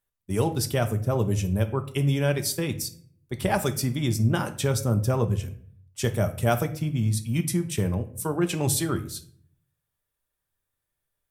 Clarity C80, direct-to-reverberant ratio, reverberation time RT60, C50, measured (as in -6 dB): 18.0 dB, 7.0 dB, 0.55 s, 14.0 dB